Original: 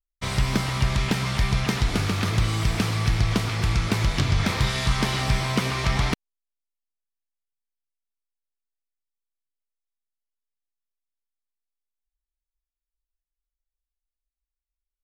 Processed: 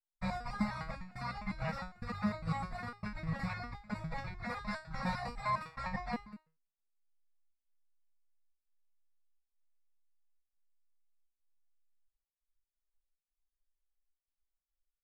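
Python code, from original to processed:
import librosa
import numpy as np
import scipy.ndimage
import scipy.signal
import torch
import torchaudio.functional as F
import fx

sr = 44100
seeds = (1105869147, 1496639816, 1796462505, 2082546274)

y = scipy.signal.sosfilt(scipy.signal.cheby1(3, 1.0, [220.0, 510.0], 'bandstop', fs=sr, output='sos'), x)
y = 10.0 ** (-14.5 / 20.0) * np.tanh(y / 10.0 ** (-14.5 / 20.0))
y = scipy.signal.lfilter(np.full(14, 1.0 / 14), 1.0, y)
y = fx.low_shelf(y, sr, hz=68.0, db=3.5)
y = y + 10.0 ** (-15.5 / 20.0) * np.pad(y, (int(196 * sr / 1000.0), 0))[:len(y)]
y = fx.dereverb_blind(y, sr, rt60_s=0.85)
y = fx.step_gate(y, sr, bpm=104, pattern='.xxxxxx.xxxxx', floor_db=-24.0, edge_ms=4.5)
y = fx.over_compress(y, sr, threshold_db=-30.0, ratio=-1.0)
y = fx.resonator_held(y, sr, hz=9.9, low_hz=160.0, high_hz=410.0)
y = y * librosa.db_to_amplitude(9.0)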